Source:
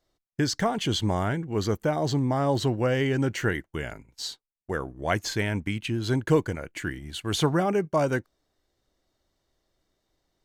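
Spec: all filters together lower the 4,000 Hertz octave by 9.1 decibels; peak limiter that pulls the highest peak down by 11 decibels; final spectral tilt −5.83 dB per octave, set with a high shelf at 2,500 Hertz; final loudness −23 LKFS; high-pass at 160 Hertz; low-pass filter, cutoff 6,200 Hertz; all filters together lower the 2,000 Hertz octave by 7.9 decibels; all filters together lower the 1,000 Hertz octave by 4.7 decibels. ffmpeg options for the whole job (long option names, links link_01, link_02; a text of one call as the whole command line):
ffmpeg -i in.wav -af "highpass=160,lowpass=6200,equalizer=frequency=1000:width_type=o:gain=-4.5,equalizer=frequency=2000:width_type=o:gain=-6,highshelf=frequency=2500:gain=-3,equalizer=frequency=4000:width_type=o:gain=-6,volume=10.5dB,alimiter=limit=-11.5dB:level=0:latency=1" out.wav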